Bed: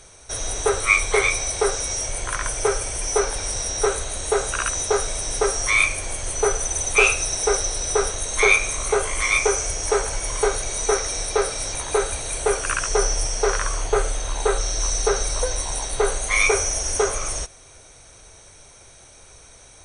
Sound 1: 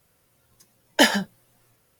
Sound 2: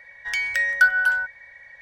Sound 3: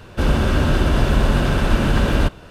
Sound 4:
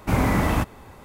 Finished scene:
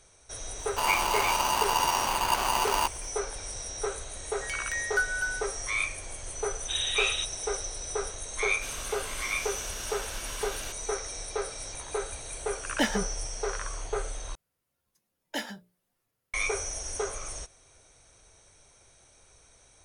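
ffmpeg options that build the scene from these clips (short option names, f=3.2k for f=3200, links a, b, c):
-filter_complex "[3:a]asplit=2[a][b];[1:a]asplit=2[c][d];[0:a]volume=-11.5dB[e];[a]aeval=exprs='val(0)*sgn(sin(2*PI*940*n/s))':c=same[f];[4:a]lowpass=f=3.3k:t=q:w=0.5098,lowpass=f=3.3k:t=q:w=0.6013,lowpass=f=3.3k:t=q:w=0.9,lowpass=f=3.3k:t=q:w=2.563,afreqshift=-3900[g];[b]aderivative[h];[c]bass=f=250:g=6,treble=f=4k:g=-6[i];[d]bandreject=f=60:t=h:w=6,bandreject=f=120:t=h:w=6,bandreject=f=180:t=h:w=6,bandreject=f=240:t=h:w=6,bandreject=f=300:t=h:w=6,bandreject=f=360:t=h:w=6,bandreject=f=420:t=h:w=6,bandreject=f=480:t=h:w=6,bandreject=f=540:t=h:w=6,bandreject=f=600:t=h:w=6[j];[e]asplit=2[k][l];[k]atrim=end=14.354[m];[j]atrim=end=1.99,asetpts=PTS-STARTPTS,volume=-17dB[n];[l]atrim=start=16.336[o];[f]atrim=end=2.5,asetpts=PTS-STARTPTS,volume=-11.5dB,afade=t=in:d=0.004:c=hsin,afade=t=out:st=2.496:d=0.004:c=hsin,adelay=590[p];[2:a]atrim=end=1.81,asetpts=PTS-STARTPTS,volume=-11dB,afade=t=in:d=0.004:c=hsin,afade=t=out:st=1.806:d=0.004:c=hsin,adelay=4160[q];[g]atrim=end=1.04,asetpts=PTS-STARTPTS,volume=-11.5dB,afade=t=in:d=0.004:c=hsin,afade=t=out:st=1.036:d=0.004:c=hsin,adelay=6610[r];[h]atrim=end=2.5,asetpts=PTS-STARTPTS,volume=-4dB,afade=t=in:d=0.004:c=hsin,afade=t=out:st=2.496:d=0.004:c=hsin,adelay=8440[s];[i]atrim=end=1.99,asetpts=PTS-STARTPTS,volume=-10dB,afade=t=in:d=0.004:c=hsin,afade=t=out:st=1.986:d=0.004:c=hsin,adelay=11800[t];[m][n]acrossfade=d=0.004:c1=hsin:c2=hsin[u];[u][o]acrossfade=d=0.004:c1=hsin:c2=hsin[v];[v][p][q][r][s][t]amix=inputs=6:normalize=0"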